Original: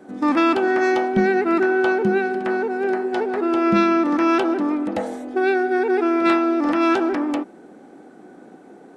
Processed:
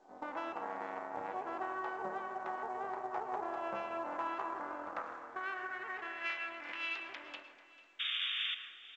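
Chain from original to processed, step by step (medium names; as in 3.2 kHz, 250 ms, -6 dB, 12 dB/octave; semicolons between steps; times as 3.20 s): resonant low shelf 100 Hz +8 dB, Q 1.5; compression 4:1, threshold -24 dBFS, peak gain reduction 9 dB; 0.52–1.33 s: ring modulator 100 Hz; Chebyshev shaper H 4 -8 dB, 7 -25 dB, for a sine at -14.5 dBFS; 7.99–8.55 s: painted sound noise 1.1–3.7 kHz -26 dBFS; band-pass sweep 870 Hz -> 3.5 kHz, 4.00–7.66 s; feedback delay 442 ms, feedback 51%, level -18 dB; reverberation RT60 1.0 s, pre-delay 97 ms, DRR 7.5 dB; trim -6.5 dB; µ-law 128 kbps 16 kHz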